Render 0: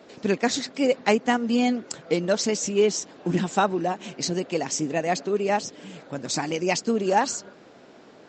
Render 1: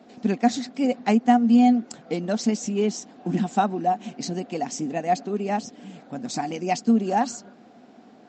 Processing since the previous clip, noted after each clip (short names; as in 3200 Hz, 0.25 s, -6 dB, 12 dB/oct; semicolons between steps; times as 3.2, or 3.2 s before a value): small resonant body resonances 230/730 Hz, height 14 dB, ringing for 55 ms; gain -6 dB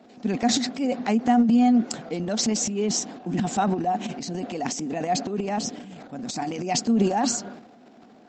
transient shaper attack -1 dB, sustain +12 dB; gain -2.5 dB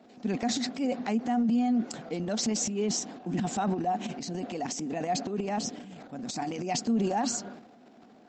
limiter -16 dBFS, peak gain reduction 6.5 dB; gain -4 dB